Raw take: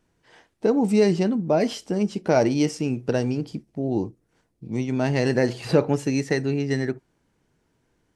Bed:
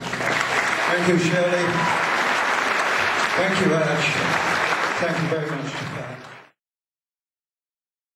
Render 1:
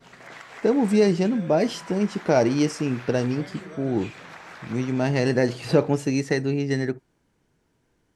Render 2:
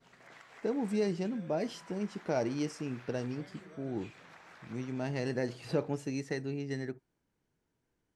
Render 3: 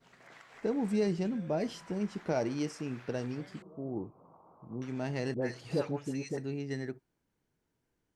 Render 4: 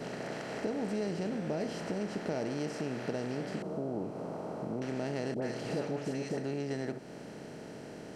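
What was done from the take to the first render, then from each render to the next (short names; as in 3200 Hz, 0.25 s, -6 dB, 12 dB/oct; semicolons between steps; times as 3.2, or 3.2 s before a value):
add bed -21.5 dB
gain -12.5 dB
0.54–2.33 low shelf 100 Hz +11.5 dB; 3.62–4.82 elliptic low-pass 1100 Hz; 5.34–6.38 dispersion highs, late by 84 ms, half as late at 1100 Hz
per-bin compression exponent 0.4; compressor 2:1, threshold -37 dBFS, peak gain reduction 9 dB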